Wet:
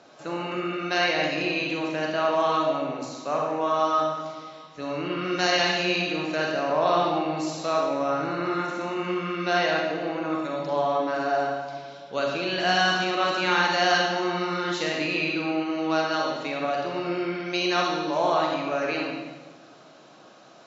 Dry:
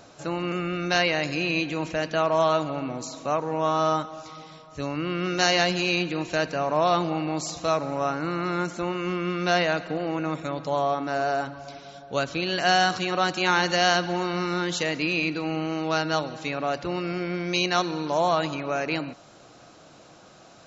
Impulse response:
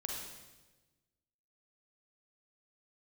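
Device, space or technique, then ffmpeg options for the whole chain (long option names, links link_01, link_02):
supermarket ceiling speaker: -filter_complex "[0:a]highpass=210,lowpass=5100[link_01];[1:a]atrim=start_sample=2205[link_02];[link_01][link_02]afir=irnorm=-1:irlink=0"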